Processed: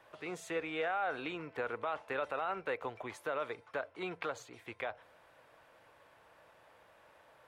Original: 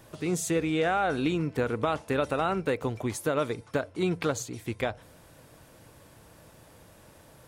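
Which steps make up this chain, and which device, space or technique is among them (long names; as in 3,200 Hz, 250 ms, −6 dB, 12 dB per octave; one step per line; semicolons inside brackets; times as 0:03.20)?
DJ mixer with the lows and highs turned down (three-way crossover with the lows and the highs turned down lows −19 dB, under 510 Hz, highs −18 dB, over 3,200 Hz; brickwall limiter −23.5 dBFS, peak gain reduction 6.5 dB)
level −2.5 dB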